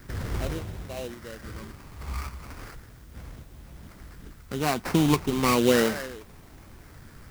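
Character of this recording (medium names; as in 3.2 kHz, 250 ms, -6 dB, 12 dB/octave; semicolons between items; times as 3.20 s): phasing stages 8, 0.35 Hz, lowest notch 540–1200 Hz; aliases and images of a low sample rate 3.4 kHz, jitter 20%; random-step tremolo; a quantiser's noise floor 12-bit, dither triangular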